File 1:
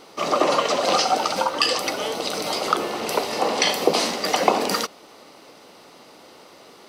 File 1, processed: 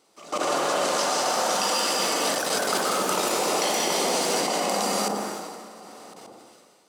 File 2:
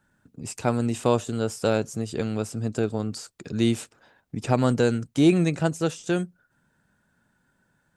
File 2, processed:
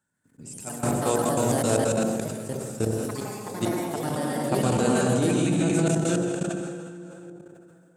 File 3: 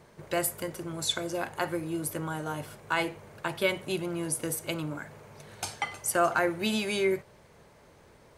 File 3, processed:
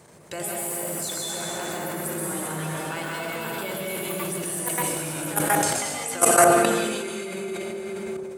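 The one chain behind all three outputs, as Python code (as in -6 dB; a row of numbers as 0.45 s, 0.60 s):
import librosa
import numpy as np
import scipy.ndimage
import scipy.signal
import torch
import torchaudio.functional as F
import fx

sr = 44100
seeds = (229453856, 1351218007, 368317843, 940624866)

p1 = fx.peak_eq(x, sr, hz=8000.0, db=11.0, octaves=0.72)
p2 = fx.rev_plate(p1, sr, seeds[0], rt60_s=3.1, hf_ratio=0.7, predelay_ms=115, drr_db=-5.0)
p3 = fx.level_steps(p2, sr, step_db=19)
p4 = fx.high_shelf(p3, sr, hz=11000.0, db=5.5)
p5 = fx.echo_pitch(p4, sr, ms=134, semitones=3, count=3, db_per_echo=-6.0)
p6 = scipy.signal.sosfilt(scipy.signal.butter(2, 83.0, 'highpass', fs=sr, output='sos'), p5)
p7 = p6 + fx.echo_wet_lowpass(p6, sr, ms=63, feedback_pct=54, hz=760.0, wet_db=-6, dry=0)
p8 = fx.sustainer(p7, sr, db_per_s=29.0)
y = p8 * 10.0 ** (-26 / 20.0) / np.sqrt(np.mean(np.square(p8)))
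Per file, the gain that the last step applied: -7.0 dB, -4.5 dB, +5.0 dB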